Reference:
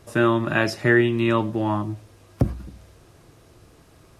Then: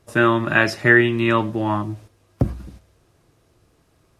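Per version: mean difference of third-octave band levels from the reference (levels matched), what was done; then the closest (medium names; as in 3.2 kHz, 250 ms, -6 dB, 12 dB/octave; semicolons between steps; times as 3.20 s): 4.0 dB: gate -42 dBFS, range -9 dB; dynamic bell 1.8 kHz, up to +6 dB, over -33 dBFS, Q 0.87; trim +1 dB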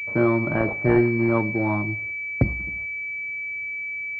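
7.0 dB: gate -46 dBFS, range -9 dB; class-D stage that switches slowly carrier 2.3 kHz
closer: first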